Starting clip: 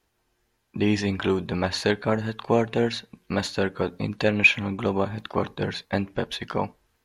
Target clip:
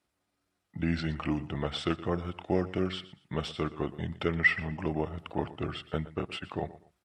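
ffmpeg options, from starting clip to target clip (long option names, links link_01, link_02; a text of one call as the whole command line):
ffmpeg -i in.wav -af "highpass=frequency=67:width=0.5412,highpass=frequency=67:width=1.3066,asetrate=35002,aresample=44100,atempo=1.25992,aecho=1:1:119|238:0.141|0.0367,volume=-7dB" out.wav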